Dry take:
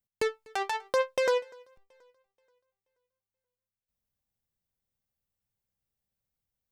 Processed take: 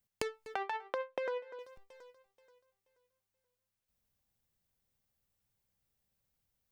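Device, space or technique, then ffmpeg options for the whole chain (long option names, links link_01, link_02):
serial compression, leveller first: -filter_complex "[0:a]acompressor=threshold=-29dB:ratio=2.5,acompressor=threshold=-39dB:ratio=6,asettb=1/sr,asplit=3[link_01][link_02][link_03];[link_01]atrim=end=0.544[link_04];[link_02]atrim=start=0.54:end=1.59,asetpts=PTS-STARTPTS,afade=type=in:duration=0.004:curve=qsin,afade=type=out:start_time=1.046:duration=0.004:curve=qsin,acrossover=split=210 3300:gain=0.2 1 0.0891[link_05][link_06][link_07];[link_05][link_06][link_07]amix=inputs=3:normalize=0[link_08];[link_03]atrim=start=1.586[link_09];[link_04][link_08]acrossfade=duration=0.004:curve1=hsin:curve2=qsin[link_10];[link_10][link_09]acrossfade=duration=0.004:curve1=qsin:curve2=hsin,volume=4.5dB"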